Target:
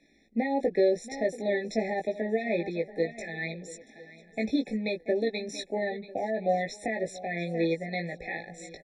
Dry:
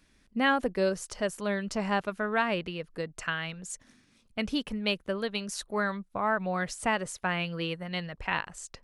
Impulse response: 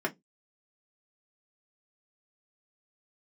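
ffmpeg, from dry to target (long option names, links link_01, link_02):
-filter_complex "[0:a]acrossover=split=260 6700:gain=0.0794 1 0.0891[link_01][link_02][link_03];[link_01][link_02][link_03]amix=inputs=3:normalize=0,asplit=2[link_04][link_05];[link_05]aecho=0:1:682:0.119[link_06];[link_04][link_06]amix=inputs=2:normalize=0,alimiter=limit=-22.5dB:level=0:latency=1:release=70,lowshelf=frequency=360:gain=9,asplit=2[link_07][link_08];[link_08]adelay=18,volume=-3.5dB[link_09];[link_07][link_09]amix=inputs=2:normalize=0,asplit=2[link_10][link_11];[link_11]aecho=0:1:998|1996:0.0794|0.0214[link_12];[link_10][link_12]amix=inputs=2:normalize=0,afftfilt=real='re*eq(mod(floor(b*sr/1024/860),2),0)':imag='im*eq(mod(floor(b*sr/1024/860),2),0)':win_size=1024:overlap=0.75,volume=2.5dB"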